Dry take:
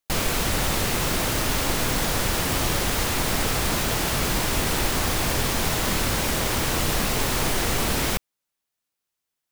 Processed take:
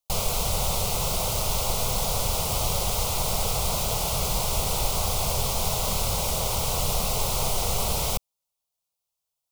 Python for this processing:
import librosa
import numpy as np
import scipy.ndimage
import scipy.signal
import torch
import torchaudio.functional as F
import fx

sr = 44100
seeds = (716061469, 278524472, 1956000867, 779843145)

y = fx.fixed_phaser(x, sr, hz=710.0, stages=4)